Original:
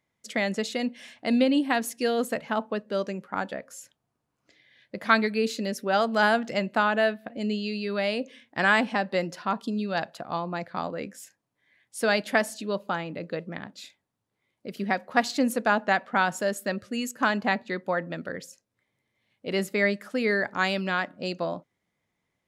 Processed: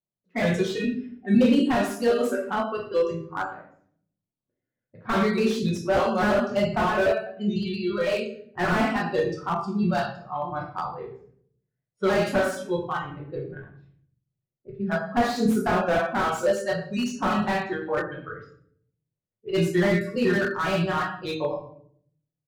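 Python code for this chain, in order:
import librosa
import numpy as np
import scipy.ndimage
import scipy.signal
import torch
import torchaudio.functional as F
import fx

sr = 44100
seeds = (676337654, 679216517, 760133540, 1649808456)

y = fx.pitch_trill(x, sr, semitones=-2.5, every_ms=84)
y = fx.env_lowpass(y, sr, base_hz=590.0, full_db=-24.0)
y = fx.noise_reduce_blind(y, sr, reduce_db=18)
y = fx.room_shoebox(y, sr, seeds[0], volume_m3=86.0, walls='mixed', distance_m=1.0)
y = fx.slew_limit(y, sr, full_power_hz=87.0)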